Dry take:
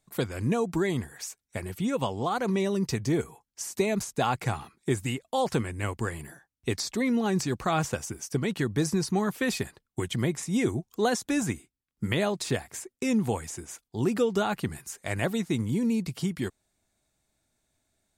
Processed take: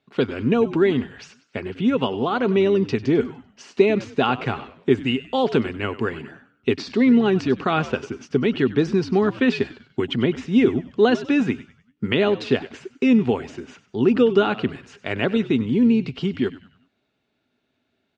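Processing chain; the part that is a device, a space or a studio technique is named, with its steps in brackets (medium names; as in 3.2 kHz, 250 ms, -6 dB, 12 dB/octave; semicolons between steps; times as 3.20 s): frequency-shifting delay pedal into a guitar cabinet (frequency-shifting echo 97 ms, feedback 42%, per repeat -93 Hz, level -15.5 dB; cabinet simulation 110–4300 Hz, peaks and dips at 250 Hz +9 dB, 410 Hz +9 dB, 1.4 kHz +5 dB, 2.8 kHz +9 dB); 5.14–5.76 s: treble shelf 8.1 kHz +9 dB; trim +3 dB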